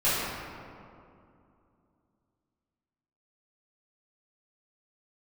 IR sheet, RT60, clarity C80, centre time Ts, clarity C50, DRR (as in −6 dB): 2.6 s, −1.0 dB, 148 ms, −3.0 dB, −14.5 dB